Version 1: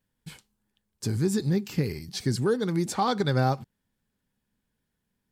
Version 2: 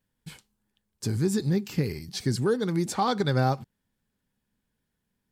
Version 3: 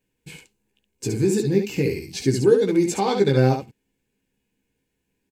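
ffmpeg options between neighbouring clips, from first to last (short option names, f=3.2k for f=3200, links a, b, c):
-af anull
-filter_complex "[0:a]superequalizer=6b=2.24:7b=2.51:10b=0.501:12b=2.51:15b=1.58,asplit=2[a][b];[b]aecho=0:1:15|70:0.596|0.562[c];[a][c]amix=inputs=2:normalize=0"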